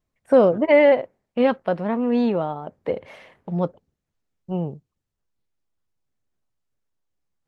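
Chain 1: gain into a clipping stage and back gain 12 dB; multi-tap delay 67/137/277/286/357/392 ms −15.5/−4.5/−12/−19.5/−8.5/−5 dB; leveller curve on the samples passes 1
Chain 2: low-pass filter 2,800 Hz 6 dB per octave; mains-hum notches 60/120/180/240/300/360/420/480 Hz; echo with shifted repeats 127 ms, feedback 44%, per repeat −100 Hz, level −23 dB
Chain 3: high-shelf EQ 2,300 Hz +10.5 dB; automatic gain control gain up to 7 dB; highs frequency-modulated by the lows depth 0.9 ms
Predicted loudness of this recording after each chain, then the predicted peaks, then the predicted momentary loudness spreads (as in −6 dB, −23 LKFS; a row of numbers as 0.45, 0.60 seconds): −17.0, −22.0, −18.5 LKFS; −4.0, −5.5, −1.5 dBFS; 15, 16, 13 LU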